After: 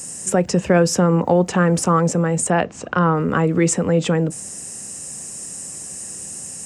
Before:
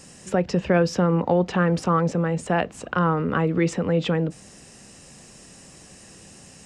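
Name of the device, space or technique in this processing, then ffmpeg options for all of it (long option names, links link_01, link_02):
budget condenser microphone: -filter_complex "[0:a]asettb=1/sr,asplit=3[link_01][link_02][link_03];[link_01]atrim=end=2.504[link_04];[link_02]atrim=start=2.5:end=3.15,asetpts=PTS-STARTPTS,afade=type=in:duration=0.004:curve=qsin,afade=type=out:start_time=0.646:duration=0.004:curve=qsin,lowpass=frequency=5500:width=0.5412,lowpass=frequency=5500:width=1.3066[link_05];[link_03]atrim=start=3.146[link_06];[link_04][link_05]acrossfade=duration=0.004:curve1=hsin:curve2=qsin[link_07];[link_07][link_06]acrossfade=duration=0.004:curve1=qsin:curve2=hsin,highpass=66,highshelf=frequency=5800:width_type=q:width=1.5:gain=13,volume=4.5dB"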